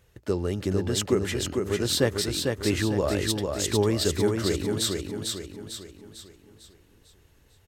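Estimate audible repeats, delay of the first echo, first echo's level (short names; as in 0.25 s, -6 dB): 5, 0.449 s, -4.0 dB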